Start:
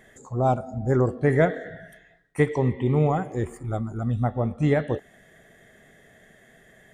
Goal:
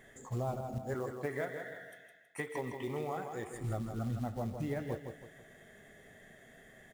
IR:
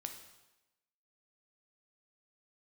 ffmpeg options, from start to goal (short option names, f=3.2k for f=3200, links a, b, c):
-filter_complex "[0:a]asettb=1/sr,asplit=3[a][b][c];[a]atrim=end=0.784[d];[b]atrim=start=0.78:end=3.54,asetpts=PTS-STARTPTS,afade=t=in:d=0.004:c=qsin,afade=t=out:st=2.756:d=0.004:c=qsin,highpass=f=780:p=1[e];[c]atrim=start=3.536[f];[d][e]acrossfade=d=0.004:c1=hsin:c2=qsin[g];[g][f]acrossfade=d=0.004:c1=qsin:c2=hsin,acompressor=threshold=-30dB:ratio=6,flanger=delay=7.1:depth=3.1:regen=-63:speed=0.76:shape=sinusoidal,acrusher=bits=6:mode=log:mix=0:aa=0.000001,aecho=1:1:161|322|483|644:0.447|0.165|0.0612|0.0226"